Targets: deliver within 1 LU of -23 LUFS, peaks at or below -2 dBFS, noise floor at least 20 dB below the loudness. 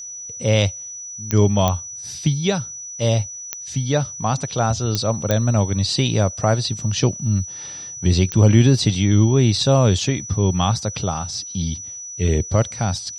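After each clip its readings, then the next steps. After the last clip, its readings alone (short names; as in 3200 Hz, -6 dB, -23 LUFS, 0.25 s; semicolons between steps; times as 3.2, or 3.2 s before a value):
clicks 6; steady tone 5900 Hz; tone level -31 dBFS; loudness -19.5 LUFS; peak -1.5 dBFS; loudness target -23.0 LUFS
-> de-click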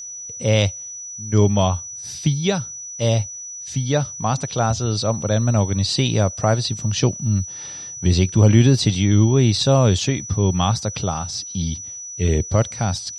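clicks 0; steady tone 5900 Hz; tone level -31 dBFS
-> notch 5900 Hz, Q 30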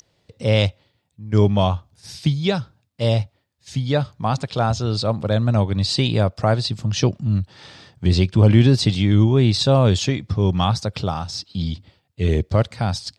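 steady tone none; loudness -20.0 LUFS; peak -1.5 dBFS; loudness target -23.0 LUFS
-> gain -3 dB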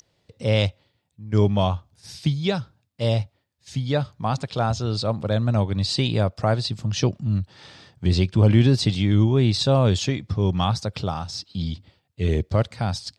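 loudness -23.0 LUFS; peak -4.5 dBFS; noise floor -71 dBFS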